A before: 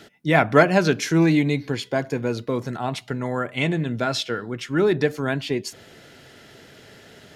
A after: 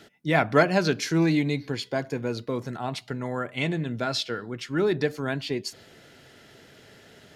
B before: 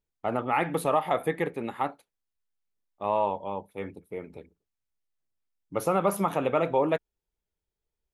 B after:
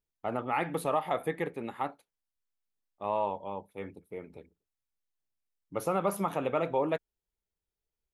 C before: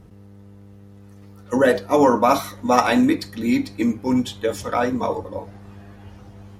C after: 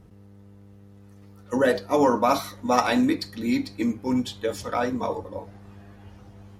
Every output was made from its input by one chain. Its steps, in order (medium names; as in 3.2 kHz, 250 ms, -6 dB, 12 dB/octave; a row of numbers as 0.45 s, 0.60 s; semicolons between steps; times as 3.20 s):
dynamic bell 4.5 kHz, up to +6 dB, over -48 dBFS, Q 3.5; trim -4.5 dB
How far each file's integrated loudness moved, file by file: -4.5 LU, -4.5 LU, -4.5 LU